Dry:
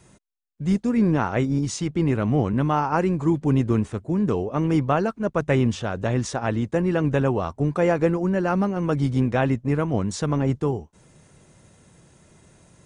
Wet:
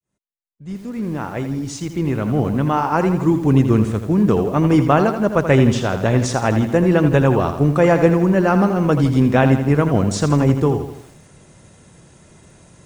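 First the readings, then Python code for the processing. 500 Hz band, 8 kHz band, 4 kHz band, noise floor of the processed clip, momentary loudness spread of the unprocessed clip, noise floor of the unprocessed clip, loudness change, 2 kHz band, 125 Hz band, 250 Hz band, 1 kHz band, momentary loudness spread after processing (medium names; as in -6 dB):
+6.5 dB, +5.0 dB, +6.0 dB, -49 dBFS, 4 LU, -57 dBFS, +6.0 dB, +6.5 dB, +6.0 dB, +6.0 dB, +6.0 dB, 11 LU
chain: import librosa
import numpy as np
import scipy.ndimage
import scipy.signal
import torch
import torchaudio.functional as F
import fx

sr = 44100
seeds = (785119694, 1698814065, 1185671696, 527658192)

y = fx.fade_in_head(x, sr, length_s=4.05)
y = fx.echo_crushed(y, sr, ms=82, feedback_pct=55, bits=8, wet_db=-9)
y = y * 10.0 ** (6.5 / 20.0)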